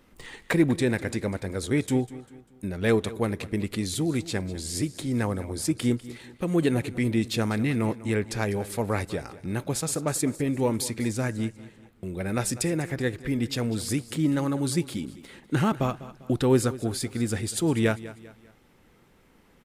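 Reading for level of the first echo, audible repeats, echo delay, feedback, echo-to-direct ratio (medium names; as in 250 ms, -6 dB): -17.0 dB, 3, 198 ms, 40%, -16.5 dB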